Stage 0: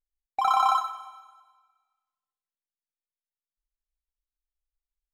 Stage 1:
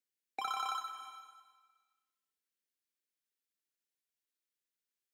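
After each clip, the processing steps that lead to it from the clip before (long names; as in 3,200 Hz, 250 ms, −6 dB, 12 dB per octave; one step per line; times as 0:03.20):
flat-topped bell 860 Hz −12 dB 1.2 octaves
downward compressor 2.5 to 1, threshold −42 dBFS, peak gain reduction 10.5 dB
Butterworth high-pass 200 Hz 48 dB per octave
level +3 dB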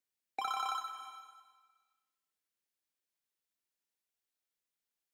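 parametric band 790 Hz +2.5 dB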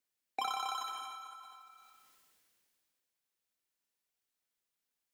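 tuned comb filter 250 Hz, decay 0.78 s, mix 60%
dynamic equaliser 1,400 Hz, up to −6 dB, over −57 dBFS, Q 1.5
level that may fall only so fast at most 21 dB per second
level +9.5 dB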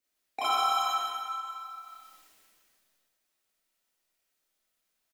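on a send: single-tap delay 125 ms −5.5 dB
on the sum: comb and all-pass reverb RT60 0.59 s, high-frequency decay 0.6×, pre-delay 0 ms, DRR −7.5 dB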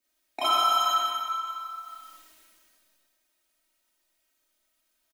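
comb filter 3.2 ms, depth 91%
level +2 dB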